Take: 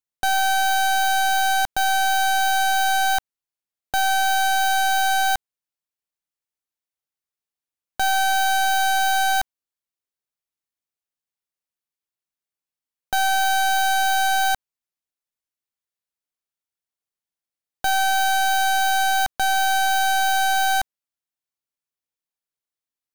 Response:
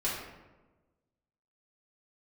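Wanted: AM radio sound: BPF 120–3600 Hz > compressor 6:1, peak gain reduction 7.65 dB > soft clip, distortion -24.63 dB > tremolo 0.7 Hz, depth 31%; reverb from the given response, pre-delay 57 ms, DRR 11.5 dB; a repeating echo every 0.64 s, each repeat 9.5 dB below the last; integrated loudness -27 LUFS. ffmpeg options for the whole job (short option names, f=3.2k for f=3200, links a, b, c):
-filter_complex "[0:a]aecho=1:1:640|1280|1920|2560:0.335|0.111|0.0365|0.012,asplit=2[a][b];[1:a]atrim=start_sample=2205,adelay=57[c];[b][c]afir=irnorm=-1:irlink=0,volume=-18.5dB[d];[a][d]amix=inputs=2:normalize=0,highpass=120,lowpass=3.6k,acompressor=threshold=-22dB:ratio=6,asoftclip=threshold=-17dB,tremolo=f=0.7:d=0.31,volume=0.5dB"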